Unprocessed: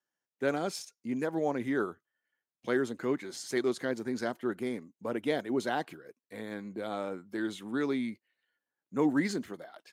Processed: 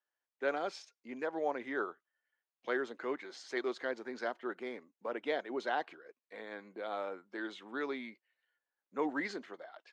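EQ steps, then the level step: HPF 510 Hz 12 dB/oct; air absorption 170 m; 0.0 dB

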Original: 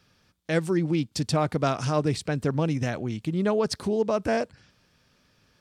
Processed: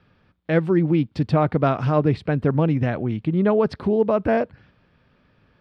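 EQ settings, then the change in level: air absorption 420 m; +6.5 dB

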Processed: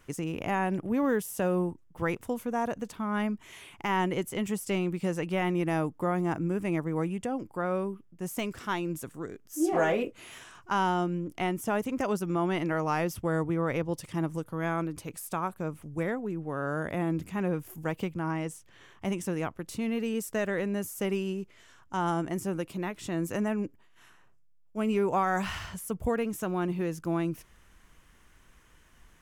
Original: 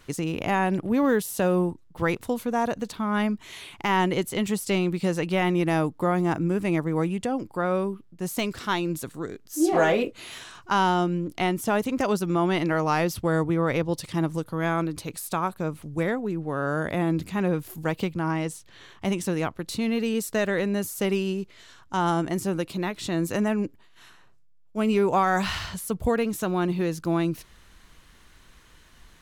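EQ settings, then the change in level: bell 4100 Hz -10.5 dB 0.45 oct; -5.0 dB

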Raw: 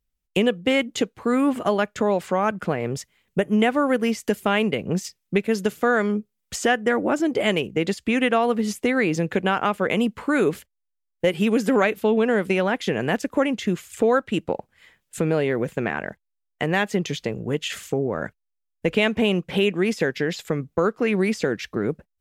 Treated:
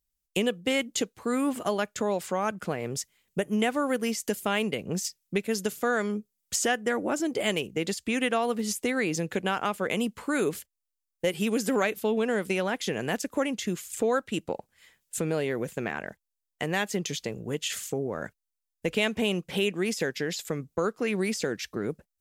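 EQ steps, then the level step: tone controls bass -1 dB, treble +11 dB; -6.5 dB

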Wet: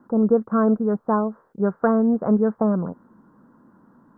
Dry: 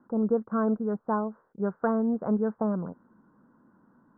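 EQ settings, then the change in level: notch 1500 Hz, Q 25; dynamic EQ 900 Hz, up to -3 dB, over -44 dBFS, Q 4.9; +7.5 dB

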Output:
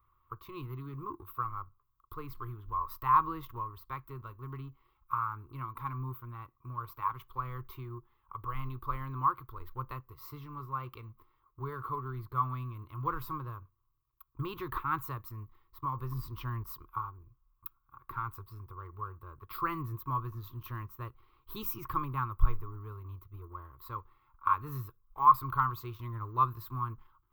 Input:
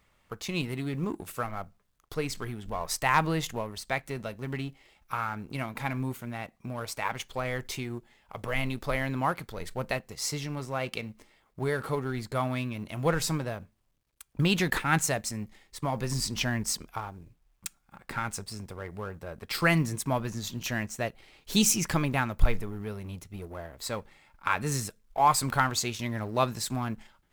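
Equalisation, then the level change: EQ curve 130 Hz 0 dB, 180 Hz -23 dB, 350 Hz -4 dB, 690 Hz -26 dB, 1100 Hz +11 dB, 1700 Hz -16 dB, 3800 Hz -17 dB, 6700 Hz -30 dB, 9600 Hz -26 dB, 15000 Hz +5 dB; -3.0 dB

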